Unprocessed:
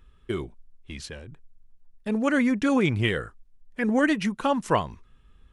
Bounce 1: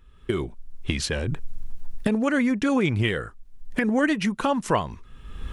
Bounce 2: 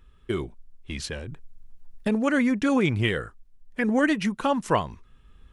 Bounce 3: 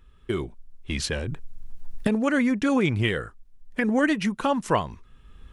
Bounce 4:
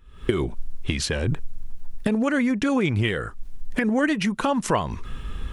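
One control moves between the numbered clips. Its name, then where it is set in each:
recorder AGC, rising by: 32, 5.1, 13, 83 dB/s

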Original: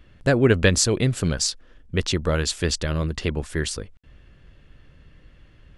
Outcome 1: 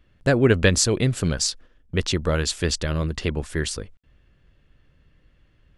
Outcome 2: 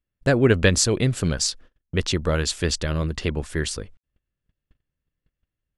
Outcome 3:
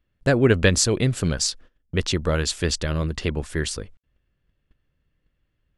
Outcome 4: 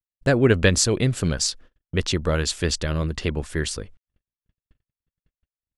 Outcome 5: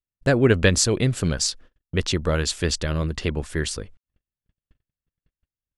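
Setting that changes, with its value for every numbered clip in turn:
gate, range: -8, -33, -21, -60, -46 dB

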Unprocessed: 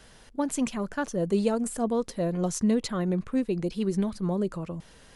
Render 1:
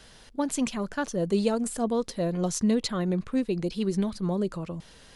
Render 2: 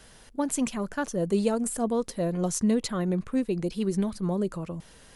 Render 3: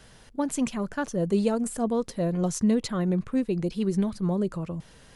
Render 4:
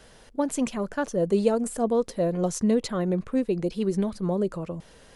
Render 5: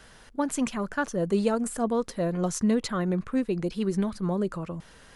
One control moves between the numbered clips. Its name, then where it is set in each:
bell, frequency: 4100, 11000, 120, 520, 1400 Hz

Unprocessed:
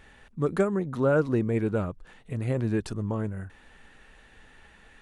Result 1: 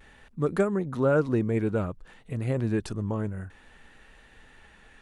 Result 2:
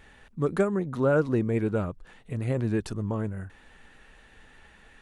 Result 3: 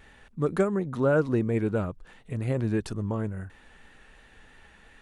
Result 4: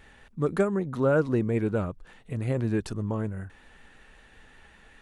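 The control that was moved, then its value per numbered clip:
vibrato, rate: 0.54, 8.4, 2.9, 5.3 Hz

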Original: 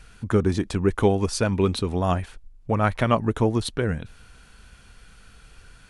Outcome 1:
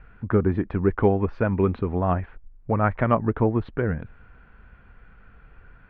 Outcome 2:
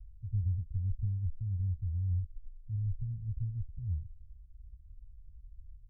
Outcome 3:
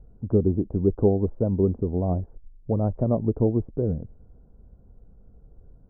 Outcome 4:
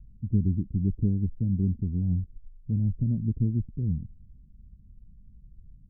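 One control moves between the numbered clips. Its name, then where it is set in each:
inverse Chebyshev low-pass, stop band from: 10000, 530, 3600, 1300 Hz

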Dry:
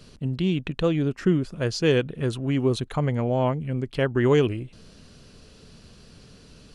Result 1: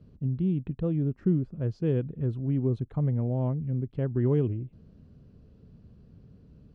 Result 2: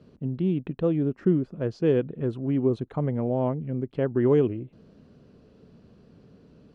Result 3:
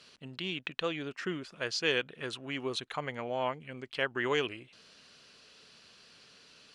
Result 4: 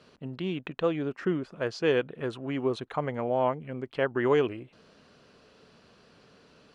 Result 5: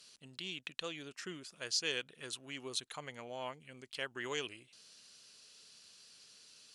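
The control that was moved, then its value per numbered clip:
band-pass, frequency: 100, 290, 2600, 970, 7900 Hz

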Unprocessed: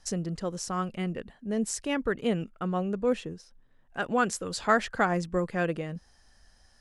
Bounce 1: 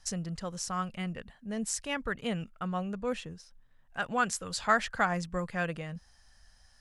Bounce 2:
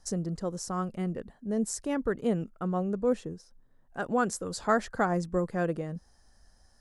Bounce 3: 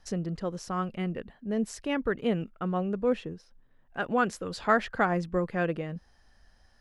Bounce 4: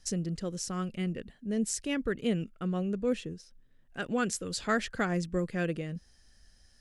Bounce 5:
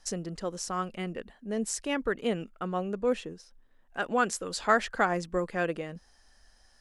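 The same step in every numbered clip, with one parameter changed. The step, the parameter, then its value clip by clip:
bell, frequency: 350, 2700, 8200, 910, 110 Hz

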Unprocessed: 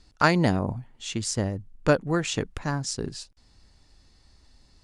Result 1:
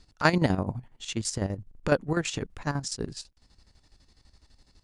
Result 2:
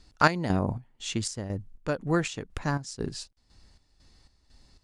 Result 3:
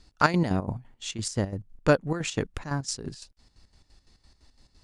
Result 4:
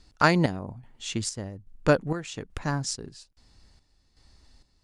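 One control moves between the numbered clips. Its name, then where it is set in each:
chopper, rate: 12, 2, 5.9, 1.2 Hz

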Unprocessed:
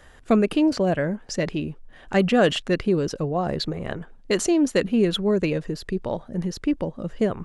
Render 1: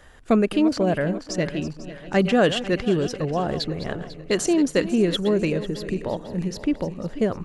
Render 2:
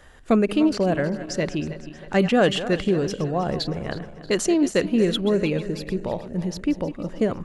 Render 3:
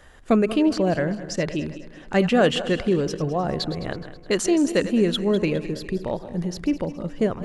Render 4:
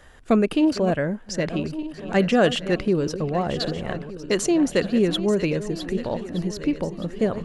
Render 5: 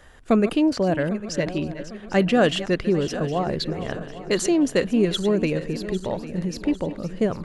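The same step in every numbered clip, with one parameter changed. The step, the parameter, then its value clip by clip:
regenerating reverse delay, time: 0.248, 0.158, 0.105, 0.609, 0.4 s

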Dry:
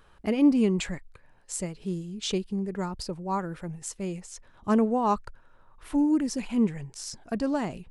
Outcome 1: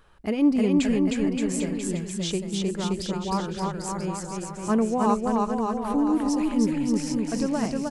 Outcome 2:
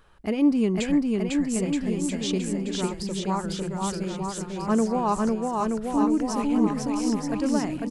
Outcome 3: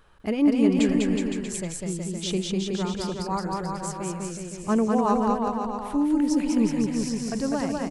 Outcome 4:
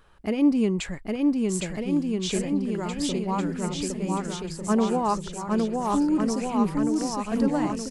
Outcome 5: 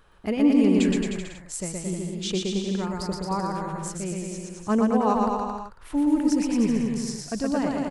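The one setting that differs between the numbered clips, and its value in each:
bouncing-ball echo, first gap: 0.31, 0.5, 0.2, 0.81, 0.12 s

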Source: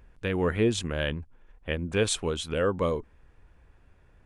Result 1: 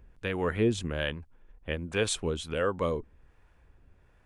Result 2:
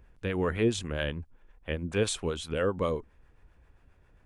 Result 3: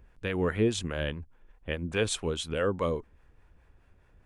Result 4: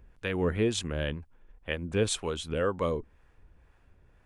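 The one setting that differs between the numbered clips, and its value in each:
harmonic tremolo, rate: 1.3, 7.5, 4.8, 2 Hz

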